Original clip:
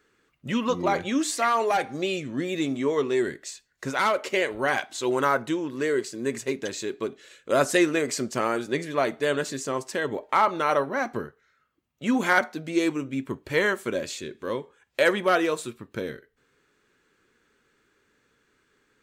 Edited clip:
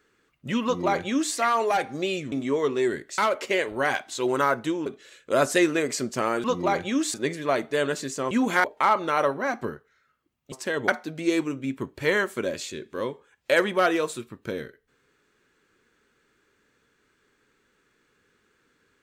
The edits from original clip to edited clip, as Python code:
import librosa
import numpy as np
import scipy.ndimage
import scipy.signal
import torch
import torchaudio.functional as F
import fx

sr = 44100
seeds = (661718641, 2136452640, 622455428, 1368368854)

y = fx.edit(x, sr, fx.duplicate(start_s=0.64, length_s=0.7, to_s=8.63),
    fx.cut(start_s=2.32, length_s=0.34),
    fx.cut(start_s=3.52, length_s=0.49),
    fx.cut(start_s=5.69, length_s=1.36),
    fx.swap(start_s=9.8, length_s=0.36, other_s=12.04, other_length_s=0.33), tone=tone)